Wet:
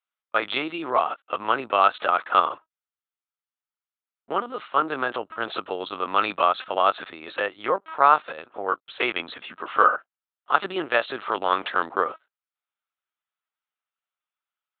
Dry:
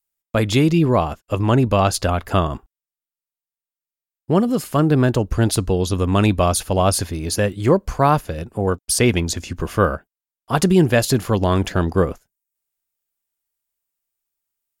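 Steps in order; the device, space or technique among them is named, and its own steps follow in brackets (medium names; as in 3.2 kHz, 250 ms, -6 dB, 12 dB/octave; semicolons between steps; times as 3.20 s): talking toy (LPC vocoder at 8 kHz pitch kept; high-pass 700 Hz 12 dB/octave; peaking EQ 1.3 kHz +9.5 dB 0.38 oct); trim -1 dB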